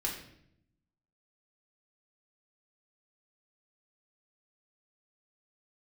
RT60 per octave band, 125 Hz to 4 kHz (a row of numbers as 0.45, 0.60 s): 1.2, 1.1, 0.80, 0.60, 0.65, 0.60 s